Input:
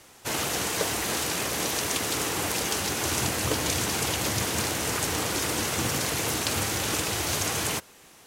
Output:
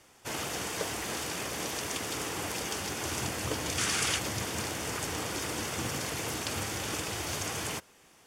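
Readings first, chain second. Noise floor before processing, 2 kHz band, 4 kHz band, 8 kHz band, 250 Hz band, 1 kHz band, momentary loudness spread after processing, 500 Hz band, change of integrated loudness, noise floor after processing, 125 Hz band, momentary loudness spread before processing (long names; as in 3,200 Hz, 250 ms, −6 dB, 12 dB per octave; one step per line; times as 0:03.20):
−53 dBFS, −5.0 dB, −6.0 dB, −7.0 dB, −6.0 dB, −6.0 dB, 5 LU, −6.0 dB, −6.5 dB, −60 dBFS, −6.0 dB, 1 LU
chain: gain on a spectral selection 0:03.78–0:04.18, 1,100–11,000 Hz +7 dB
high-shelf EQ 12,000 Hz −8 dB
notch filter 4,000 Hz, Q 12
level −6 dB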